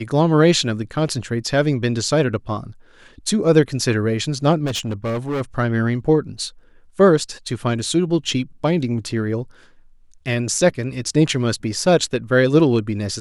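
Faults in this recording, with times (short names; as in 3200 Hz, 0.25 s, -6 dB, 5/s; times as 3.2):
4.65–5.42 clipped -20 dBFS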